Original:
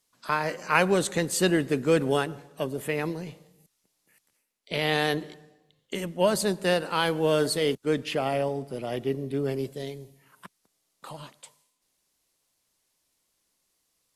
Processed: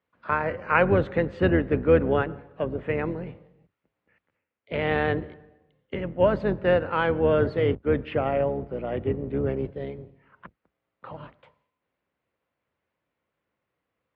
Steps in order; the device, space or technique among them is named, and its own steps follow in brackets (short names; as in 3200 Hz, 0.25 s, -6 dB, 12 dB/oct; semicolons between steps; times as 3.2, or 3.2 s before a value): sub-octave bass pedal (octaver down 2 oct, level +4 dB; speaker cabinet 70–2400 Hz, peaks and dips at 70 Hz -9 dB, 520 Hz +5 dB, 1400 Hz +3 dB)